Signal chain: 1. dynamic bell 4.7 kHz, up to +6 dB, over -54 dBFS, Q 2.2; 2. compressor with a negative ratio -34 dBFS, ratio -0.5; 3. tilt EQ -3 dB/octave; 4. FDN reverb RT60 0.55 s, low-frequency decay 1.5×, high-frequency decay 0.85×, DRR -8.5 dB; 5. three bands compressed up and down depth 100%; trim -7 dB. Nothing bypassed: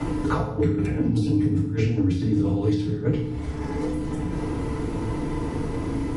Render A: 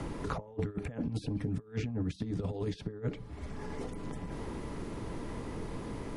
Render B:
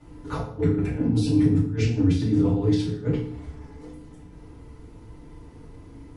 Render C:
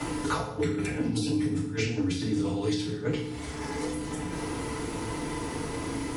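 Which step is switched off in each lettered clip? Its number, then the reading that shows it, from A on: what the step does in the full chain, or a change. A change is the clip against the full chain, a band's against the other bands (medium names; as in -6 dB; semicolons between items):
4, crest factor change +2.5 dB; 5, crest factor change +2.0 dB; 3, 4 kHz band +10.0 dB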